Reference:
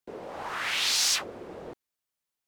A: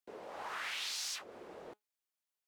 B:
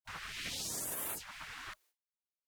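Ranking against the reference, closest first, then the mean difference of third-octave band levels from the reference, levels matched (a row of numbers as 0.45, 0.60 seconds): A, B; 4.5, 14.0 decibels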